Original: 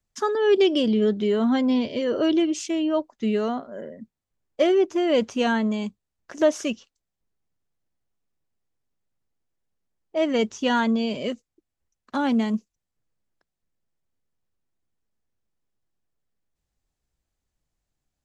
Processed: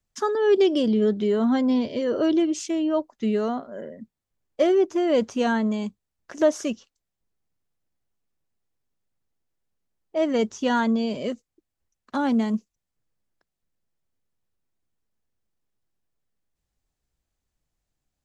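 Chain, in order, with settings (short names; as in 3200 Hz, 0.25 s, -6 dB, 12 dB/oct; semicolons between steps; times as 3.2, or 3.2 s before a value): dynamic EQ 2700 Hz, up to -6 dB, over -43 dBFS, Q 1.6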